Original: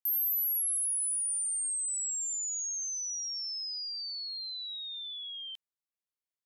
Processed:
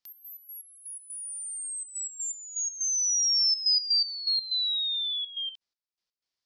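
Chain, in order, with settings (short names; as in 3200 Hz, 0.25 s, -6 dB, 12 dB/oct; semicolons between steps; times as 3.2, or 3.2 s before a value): step gate "x.x.x..x.xxxxx" 123 bpm -12 dB; synth low-pass 5000 Hz, resonance Q 3.1; gain +5.5 dB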